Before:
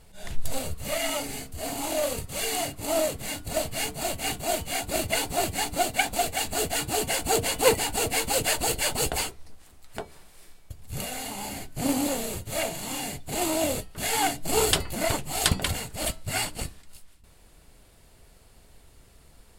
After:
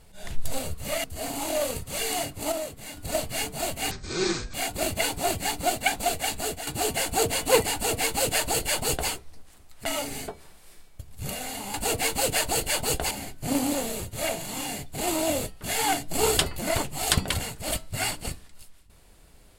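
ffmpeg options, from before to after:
-filter_complex "[0:a]asplit=11[s0][s1][s2][s3][s4][s5][s6][s7][s8][s9][s10];[s0]atrim=end=1.042[s11];[s1]atrim=start=1.458:end=2.942[s12];[s2]atrim=start=2.938:end=3.392,asetpts=PTS-STARTPTS,volume=0.447[s13];[s3]atrim=start=3.388:end=4.334[s14];[s4]atrim=start=4.33:end=4.67,asetpts=PTS-STARTPTS,asetrate=23814,aresample=44100[s15];[s5]atrim=start=4.666:end=6.8,asetpts=PTS-STARTPTS,afade=t=out:st=1.794:d=0.34:silence=0.298538[s16];[s6]atrim=start=6.8:end=9.992,asetpts=PTS-STARTPTS,afade=t=in:d=0.004:c=hsin:silence=0.298538[s17];[s7]atrim=start=1.038:end=1.462[s18];[s8]atrim=start=9.988:end=11.452[s19];[s9]atrim=start=7.858:end=9.232[s20];[s10]atrim=start=11.448[s21];[s11][s12]acrossfade=d=0.004:c1=hsin:c2=hsin[s22];[s22][s13]acrossfade=d=0.004:c1=hsin:c2=hsin[s23];[s23][s14]acrossfade=d=0.004:c1=hsin:c2=hsin[s24];[s24][s15]acrossfade=d=0.004:c1=hsin:c2=hsin[s25];[s16][s17]concat=n=2:v=0:a=1[s26];[s25][s26]acrossfade=d=0.004:c1=hsin:c2=hsin[s27];[s27][s18]acrossfade=d=0.004:c1=hsin:c2=hsin[s28];[s28][s19]acrossfade=d=0.004:c1=hsin:c2=hsin[s29];[s29][s20]acrossfade=d=0.004:c1=hsin:c2=hsin[s30];[s30][s21]acrossfade=d=0.004:c1=hsin:c2=hsin"

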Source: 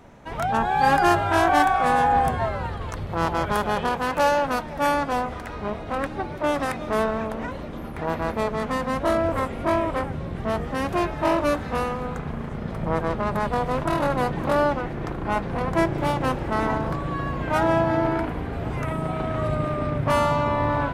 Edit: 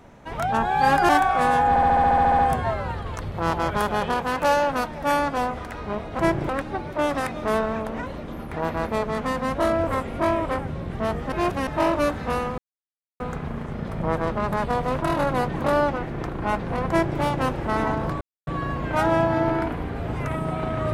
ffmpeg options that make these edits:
-filter_complex "[0:a]asplit=18[s0][s1][s2][s3][s4][s5][s6][s7][s8][s9][s10][s11][s12][s13][s14][s15][s16][s17];[s0]atrim=end=1.092[s18];[s1]atrim=start=1.538:end=2.212[s19];[s2]atrim=start=2.138:end=2.212[s20];[s3]atrim=start=2.138:end=2.212[s21];[s4]atrim=start=2.138:end=2.212[s22];[s5]atrim=start=2.138:end=2.212[s23];[s6]atrim=start=2.138:end=2.212[s24];[s7]atrim=start=2.138:end=2.212[s25];[s8]atrim=start=2.138:end=2.212[s26];[s9]atrim=start=2.138:end=2.212[s27];[s10]atrim=start=2.138:end=2.212[s28];[s11]atrim=start=2.138:end=5.942[s29];[s12]atrim=start=15.728:end=16.032[s30];[s13]atrim=start=5.938:end=10.772[s31];[s14]atrim=start=10.768:end=11.122,asetpts=PTS-STARTPTS,areverse[s32];[s15]atrim=start=11.118:end=12.03,asetpts=PTS-STARTPTS,afade=t=out:st=0.908:d=0.004:c=hsin,apad=pad_dur=0.62[s33];[s16]atrim=start=12.03:end=17.04,asetpts=PTS-STARTPTS,afade=t=in:d=0.004:c=hsin,afade=t=out:st=5.006:d=0.004:c=hsin,apad=pad_dur=0.26[s34];[s17]atrim=start=17.04,asetpts=PTS-STARTPTS,afade=t=in:d=0.004:c=hsin[s35];[s18][s19]acrossfade=d=0.004:c1=hsin:c2=hsin[s36];[s36][s20]acrossfade=d=0.004:c1=hsin:c2=hsin[s37];[s37][s21]acrossfade=d=0.004:c1=hsin:c2=hsin[s38];[s38][s22]acrossfade=d=0.004:c1=hsin:c2=hsin[s39];[s39][s23]acrossfade=d=0.004:c1=hsin:c2=hsin[s40];[s40][s24]acrossfade=d=0.004:c1=hsin:c2=hsin[s41];[s41][s25]acrossfade=d=0.004:c1=hsin:c2=hsin[s42];[s42][s26]acrossfade=d=0.004:c1=hsin:c2=hsin[s43];[s43][s27]acrossfade=d=0.004:c1=hsin:c2=hsin[s44];[s44][s28]acrossfade=d=0.004:c1=hsin:c2=hsin[s45];[s45][s29]acrossfade=d=0.004:c1=hsin:c2=hsin[s46];[s46][s30]acrossfade=d=0.004:c1=hsin:c2=hsin[s47];[s47][s31]acrossfade=d=0.004:c1=hsin:c2=hsin[s48];[s48][s32]acrossfade=d=0.004:c1=hsin:c2=hsin[s49];[s33][s34][s35]concat=n=3:v=0:a=1[s50];[s49][s50]acrossfade=d=0.004:c1=hsin:c2=hsin"

